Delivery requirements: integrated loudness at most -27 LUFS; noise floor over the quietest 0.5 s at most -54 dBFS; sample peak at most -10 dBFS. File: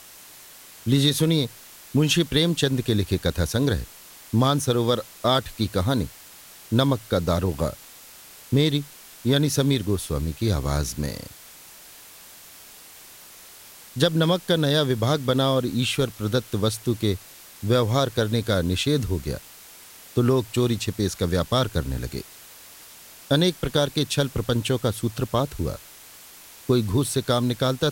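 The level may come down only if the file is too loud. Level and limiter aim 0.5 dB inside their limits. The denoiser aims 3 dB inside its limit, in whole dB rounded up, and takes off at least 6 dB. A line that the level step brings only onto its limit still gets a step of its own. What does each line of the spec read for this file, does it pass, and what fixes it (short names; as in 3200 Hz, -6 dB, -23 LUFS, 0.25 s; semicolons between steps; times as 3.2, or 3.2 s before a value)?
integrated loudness -23.5 LUFS: fail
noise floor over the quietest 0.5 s -46 dBFS: fail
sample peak -5.0 dBFS: fail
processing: denoiser 7 dB, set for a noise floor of -46 dBFS; gain -4 dB; limiter -10.5 dBFS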